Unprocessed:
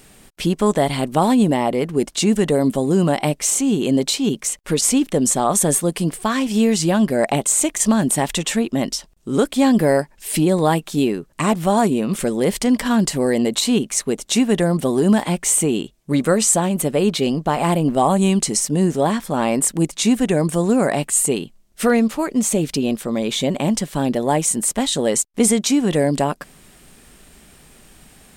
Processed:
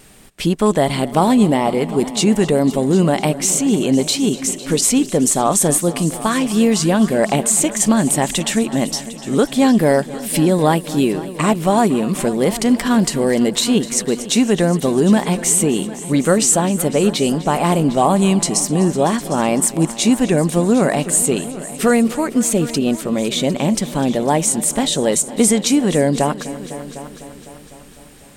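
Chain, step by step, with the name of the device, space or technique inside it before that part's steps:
multi-head tape echo (echo machine with several playback heads 252 ms, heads all three, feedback 46%, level −19 dB; tape wow and flutter 25 cents)
level +2 dB

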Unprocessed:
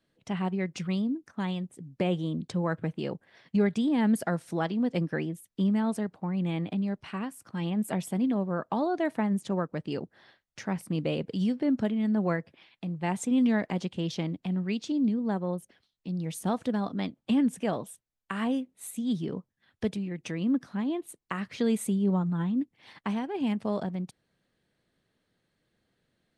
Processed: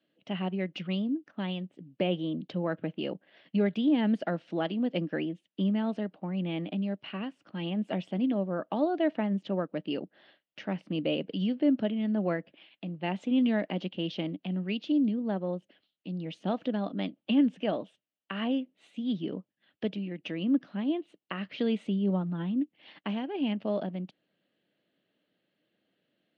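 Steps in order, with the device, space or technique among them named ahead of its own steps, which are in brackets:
kitchen radio (loudspeaker in its box 190–4,200 Hz, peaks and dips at 190 Hz +4 dB, 300 Hz +7 dB, 600 Hz +7 dB, 1,000 Hz −4 dB, 2,900 Hz +10 dB)
level −3.5 dB

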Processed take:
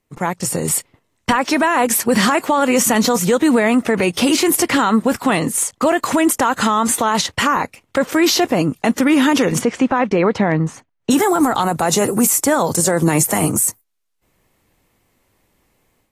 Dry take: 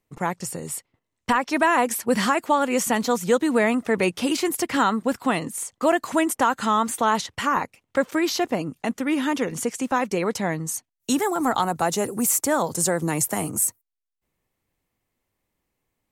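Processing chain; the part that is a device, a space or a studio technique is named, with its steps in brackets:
0:09.58–0:11.10: low-pass filter 3,100 Hz → 1,800 Hz 12 dB per octave
low-bitrate web radio (automatic gain control gain up to 10 dB; brickwall limiter −11.5 dBFS, peak gain reduction 9.5 dB; level +5 dB; AAC 48 kbit/s 32,000 Hz)

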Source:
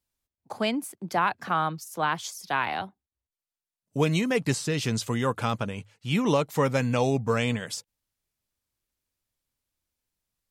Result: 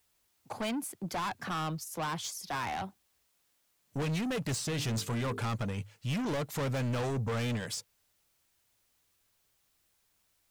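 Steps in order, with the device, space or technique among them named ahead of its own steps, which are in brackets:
0:04.69–0:05.41: mains-hum notches 50/100/150/200/250/300/350/400/450 Hz
open-reel tape (soft clipping −31 dBFS, distortion −5 dB; parametric band 96 Hz +5 dB 1.04 octaves; white noise bed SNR 38 dB)

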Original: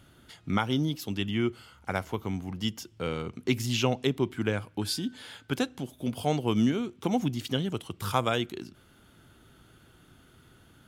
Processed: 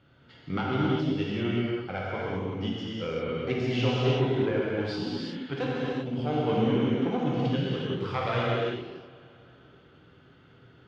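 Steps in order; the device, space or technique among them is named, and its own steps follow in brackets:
analogue delay pedal into a guitar amplifier (bucket-brigade delay 128 ms, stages 4,096, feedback 74%, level −20.5 dB; tube saturation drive 18 dB, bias 0.7; loudspeaker in its box 82–4,200 Hz, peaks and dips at 130 Hz +4 dB, 190 Hz −3 dB, 480 Hz +5 dB, 3,700 Hz −4 dB)
reverb whose tail is shaped and stops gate 410 ms flat, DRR −6 dB
level −1.5 dB

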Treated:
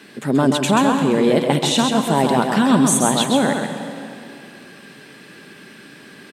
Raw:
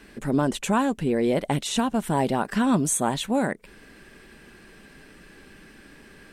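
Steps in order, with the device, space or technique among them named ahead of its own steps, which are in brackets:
PA in a hall (high-pass filter 120 Hz 24 dB per octave; parametric band 3,700 Hz +5 dB 0.71 octaves; single-tap delay 133 ms −5 dB; convolution reverb RT60 2.4 s, pre-delay 119 ms, DRR 8.5 dB)
level +5.5 dB

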